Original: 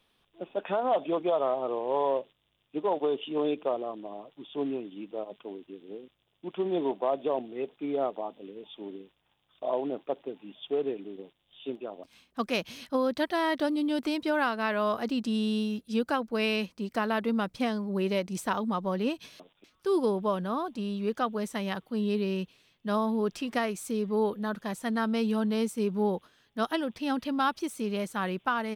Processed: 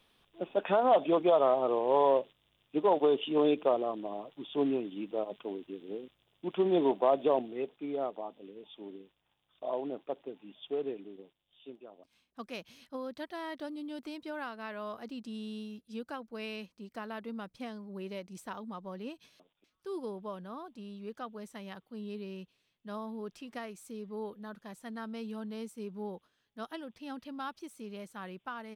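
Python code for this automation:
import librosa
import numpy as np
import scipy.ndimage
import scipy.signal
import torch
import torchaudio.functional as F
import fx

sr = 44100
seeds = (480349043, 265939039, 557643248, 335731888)

y = fx.gain(x, sr, db=fx.line((7.32, 2.0), (7.87, -5.0), (10.95, -5.0), (11.74, -12.5)))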